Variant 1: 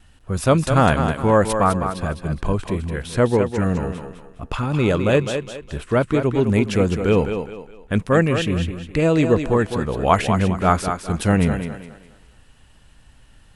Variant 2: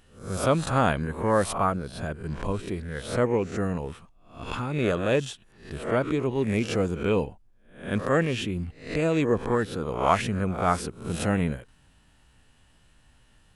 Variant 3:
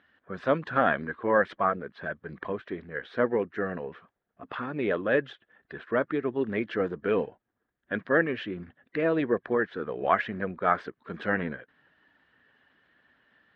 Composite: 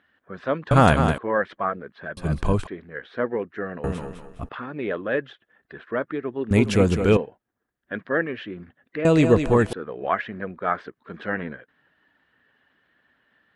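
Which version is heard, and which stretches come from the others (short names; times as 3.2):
3
0.71–1.18 from 1
2.17–2.67 from 1
3.84–4.49 from 1
6.51–7.17 from 1
9.05–9.73 from 1
not used: 2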